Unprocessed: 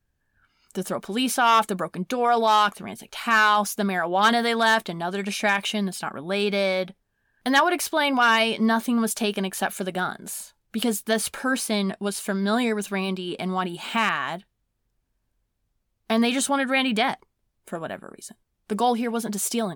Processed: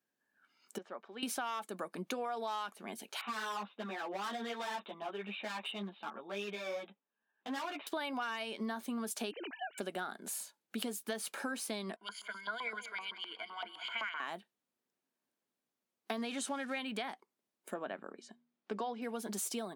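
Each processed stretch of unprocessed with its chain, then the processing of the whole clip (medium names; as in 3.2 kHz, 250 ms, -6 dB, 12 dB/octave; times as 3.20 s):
0.78–1.23 s: high-pass 1.4 kHz 6 dB/octave + tape spacing loss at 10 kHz 43 dB
3.21–7.87 s: rippled Chebyshev low-pass 3.8 kHz, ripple 6 dB + hard clipper -26 dBFS + three-phase chorus
9.31–9.78 s: formants replaced by sine waves + compression 2.5:1, threshold -35 dBFS
11.96–14.20 s: rippled EQ curve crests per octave 1.8, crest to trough 17 dB + LFO band-pass saw up 7.8 Hz 980–3700 Hz + feedback delay 190 ms, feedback 40%, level -14.5 dB
16.18–16.79 s: jump at every zero crossing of -34.5 dBFS + low-pass 10 kHz
17.74–19.02 s: Bessel low-pass 4 kHz, order 4 + de-hum 79.95 Hz, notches 3
whole clip: high-pass 220 Hz 24 dB/octave; compression 10:1, threshold -29 dBFS; trim -6 dB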